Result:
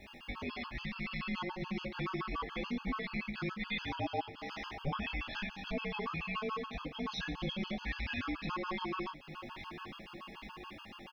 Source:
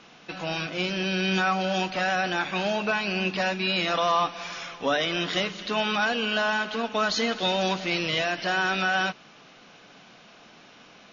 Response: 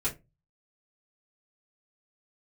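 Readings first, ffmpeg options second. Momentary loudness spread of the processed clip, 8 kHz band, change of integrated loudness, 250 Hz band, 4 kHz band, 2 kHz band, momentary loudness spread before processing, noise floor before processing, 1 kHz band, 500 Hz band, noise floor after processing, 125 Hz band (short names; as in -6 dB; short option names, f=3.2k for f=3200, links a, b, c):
10 LU, n/a, -14.0 dB, -9.0 dB, -16.0 dB, -14.5 dB, 6 LU, -52 dBFS, -13.5 dB, -15.5 dB, -52 dBFS, -7.5 dB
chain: -filter_complex "[0:a]afreqshift=-400,aeval=exprs='val(0)+0.00158*sin(2*PI*2800*n/s)':c=same,lowpass=4.2k,asplit=2[a][b];[b]adelay=20,volume=-3dB[c];[a][c]amix=inputs=2:normalize=0,asplit=2[d][e];[e]highshelf=f=3.1k:g=9[f];[1:a]atrim=start_sample=2205[g];[f][g]afir=irnorm=-1:irlink=0,volume=-27.5dB[h];[d][h]amix=inputs=2:normalize=0,acrusher=bits=10:mix=0:aa=0.000001,equalizer=f=820:w=6.4:g=2.5,aecho=1:1:821|1642|2463|3284|4105:0.112|0.0662|0.0391|0.023|0.0136,flanger=delay=3.1:depth=4.7:regen=-43:speed=0.37:shape=triangular,acompressor=threshold=-43dB:ratio=2,afftfilt=real='re*gt(sin(2*PI*7*pts/sr)*(1-2*mod(floor(b*sr/1024/850),2)),0)':imag='im*gt(sin(2*PI*7*pts/sr)*(1-2*mod(floor(b*sr/1024/850),2)),0)':win_size=1024:overlap=0.75,volume=2.5dB"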